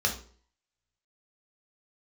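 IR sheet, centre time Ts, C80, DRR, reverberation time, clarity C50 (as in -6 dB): 16 ms, 15.0 dB, 0.0 dB, 0.50 s, 9.5 dB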